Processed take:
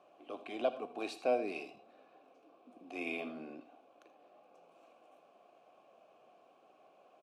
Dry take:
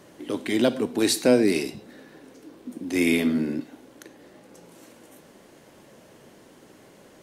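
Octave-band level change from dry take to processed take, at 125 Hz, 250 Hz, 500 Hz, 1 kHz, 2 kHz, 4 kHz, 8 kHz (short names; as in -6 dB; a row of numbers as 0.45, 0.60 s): -28.0, -22.0, -12.5, -4.0, -14.0, -20.5, -29.5 dB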